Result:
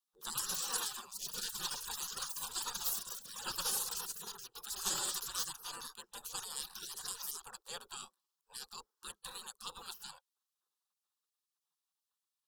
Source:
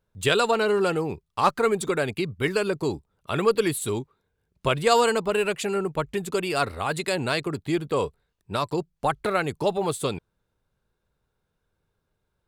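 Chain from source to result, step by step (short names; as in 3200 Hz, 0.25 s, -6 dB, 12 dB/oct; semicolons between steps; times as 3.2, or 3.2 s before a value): echoes that change speed 0.215 s, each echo +6 st, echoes 3; spectral gate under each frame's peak -25 dB weak; fixed phaser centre 430 Hz, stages 8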